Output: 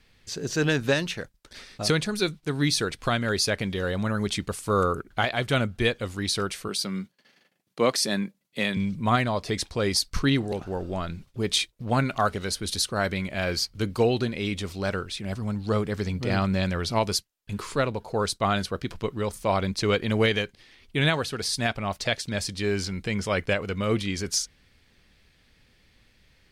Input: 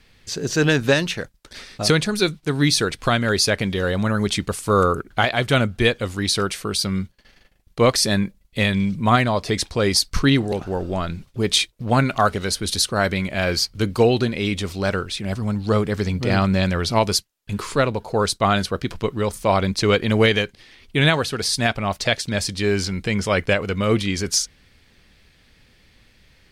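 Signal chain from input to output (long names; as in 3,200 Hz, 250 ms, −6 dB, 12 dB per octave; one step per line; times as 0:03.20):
0:06.68–0:08.77: high-pass filter 160 Hz 24 dB per octave
level −6 dB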